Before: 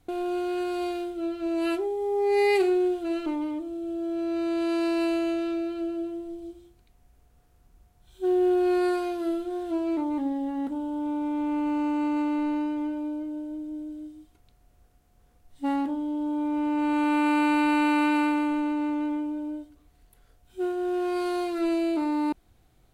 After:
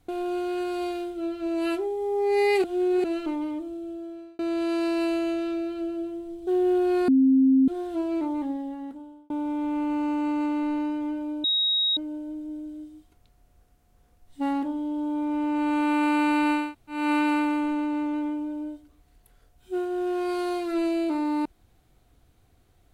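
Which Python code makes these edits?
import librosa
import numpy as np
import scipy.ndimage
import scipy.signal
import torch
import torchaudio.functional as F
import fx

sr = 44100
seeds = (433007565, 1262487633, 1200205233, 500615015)

y = fx.edit(x, sr, fx.reverse_span(start_s=2.64, length_s=0.4),
    fx.fade_out_span(start_s=3.65, length_s=0.74),
    fx.cut(start_s=6.47, length_s=1.76),
    fx.bleep(start_s=8.84, length_s=0.6, hz=265.0, db=-15.0),
    fx.fade_out_span(start_s=10.08, length_s=0.98),
    fx.insert_tone(at_s=13.2, length_s=0.53, hz=3790.0, db=-20.5),
    fx.insert_room_tone(at_s=17.86, length_s=0.36, crossfade_s=0.24), tone=tone)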